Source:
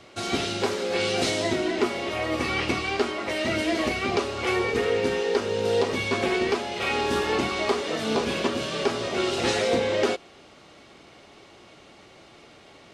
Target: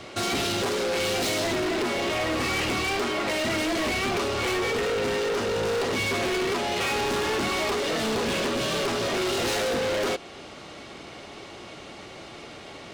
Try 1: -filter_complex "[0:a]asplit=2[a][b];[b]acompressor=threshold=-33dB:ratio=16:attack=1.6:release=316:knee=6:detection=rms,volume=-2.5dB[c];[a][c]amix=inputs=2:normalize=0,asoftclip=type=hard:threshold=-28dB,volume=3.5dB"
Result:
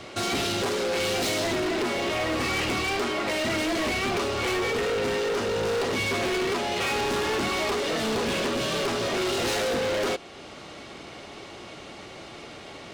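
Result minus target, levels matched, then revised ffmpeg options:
compressor: peak gain reduction +7 dB
-filter_complex "[0:a]asplit=2[a][b];[b]acompressor=threshold=-25.5dB:ratio=16:attack=1.6:release=316:knee=6:detection=rms,volume=-2.5dB[c];[a][c]amix=inputs=2:normalize=0,asoftclip=type=hard:threshold=-28dB,volume=3.5dB"

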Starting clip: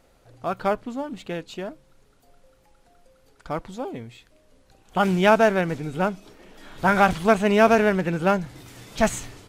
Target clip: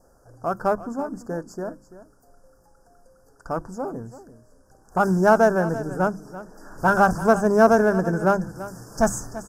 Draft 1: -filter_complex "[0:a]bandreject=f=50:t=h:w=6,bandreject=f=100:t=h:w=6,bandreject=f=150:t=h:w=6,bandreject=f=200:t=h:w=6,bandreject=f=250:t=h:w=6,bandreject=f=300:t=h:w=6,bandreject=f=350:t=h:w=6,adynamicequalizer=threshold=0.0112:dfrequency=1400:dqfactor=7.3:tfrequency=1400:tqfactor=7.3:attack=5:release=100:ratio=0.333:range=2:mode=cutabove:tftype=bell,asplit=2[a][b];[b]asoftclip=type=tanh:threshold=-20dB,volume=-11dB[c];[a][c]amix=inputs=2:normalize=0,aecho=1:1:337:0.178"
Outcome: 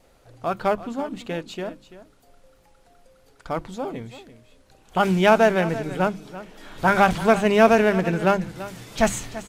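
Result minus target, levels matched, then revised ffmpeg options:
4000 Hz band +11.5 dB
-filter_complex "[0:a]bandreject=f=50:t=h:w=6,bandreject=f=100:t=h:w=6,bandreject=f=150:t=h:w=6,bandreject=f=200:t=h:w=6,bandreject=f=250:t=h:w=6,bandreject=f=300:t=h:w=6,bandreject=f=350:t=h:w=6,adynamicequalizer=threshold=0.0112:dfrequency=1400:dqfactor=7.3:tfrequency=1400:tqfactor=7.3:attack=5:release=100:ratio=0.333:range=2:mode=cutabove:tftype=bell,asuperstop=centerf=2900:order=20:qfactor=0.91,asplit=2[a][b];[b]asoftclip=type=tanh:threshold=-20dB,volume=-11dB[c];[a][c]amix=inputs=2:normalize=0,aecho=1:1:337:0.178"

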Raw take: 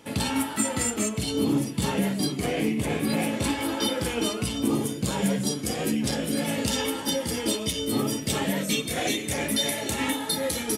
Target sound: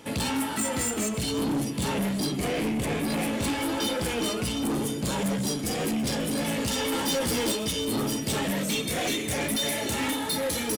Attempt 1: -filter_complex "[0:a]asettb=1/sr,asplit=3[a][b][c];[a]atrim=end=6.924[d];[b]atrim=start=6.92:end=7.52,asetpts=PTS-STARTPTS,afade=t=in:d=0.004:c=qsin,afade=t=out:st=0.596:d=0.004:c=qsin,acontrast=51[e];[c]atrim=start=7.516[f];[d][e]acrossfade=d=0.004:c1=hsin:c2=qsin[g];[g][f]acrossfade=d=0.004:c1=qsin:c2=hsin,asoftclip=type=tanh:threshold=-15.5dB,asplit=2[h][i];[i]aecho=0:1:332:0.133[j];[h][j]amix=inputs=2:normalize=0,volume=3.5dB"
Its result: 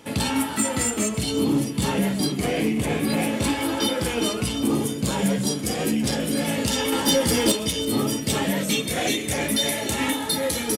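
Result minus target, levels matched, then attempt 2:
soft clip: distortion -12 dB
-filter_complex "[0:a]asettb=1/sr,asplit=3[a][b][c];[a]atrim=end=6.924[d];[b]atrim=start=6.92:end=7.52,asetpts=PTS-STARTPTS,afade=t=in:d=0.004:c=qsin,afade=t=out:st=0.596:d=0.004:c=qsin,acontrast=51[e];[c]atrim=start=7.516[f];[d][e]acrossfade=d=0.004:c1=hsin:c2=qsin[g];[g][f]acrossfade=d=0.004:c1=qsin:c2=hsin,asoftclip=type=tanh:threshold=-27.5dB,asplit=2[h][i];[i]aecho=0:1:332:0.133[j];[h][j]amix=inputs=2:normalize=0,volume=3.5dB"

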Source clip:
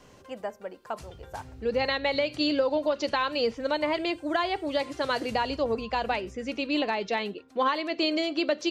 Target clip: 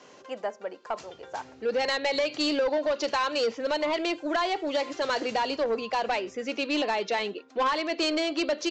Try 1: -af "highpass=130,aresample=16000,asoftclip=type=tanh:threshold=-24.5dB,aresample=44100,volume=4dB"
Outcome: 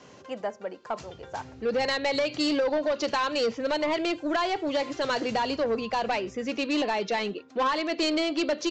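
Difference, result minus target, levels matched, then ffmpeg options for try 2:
125 Hz band +8.0 dB
-af "highpass=300,aresample=16000,asoftclip=type=tanh:threshold=-24.5dB,aresample=44100,volume=4dB"

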